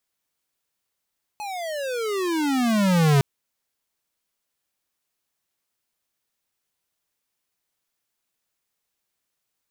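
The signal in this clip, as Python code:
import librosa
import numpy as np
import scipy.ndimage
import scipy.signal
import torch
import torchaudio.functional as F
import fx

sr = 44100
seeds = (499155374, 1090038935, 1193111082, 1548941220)

y = fx.riser_tone(sr, length_s=1.81, level_db=-16.0, wave='square', hz=856.0, rise_st=-32.0, swell_db=16.0)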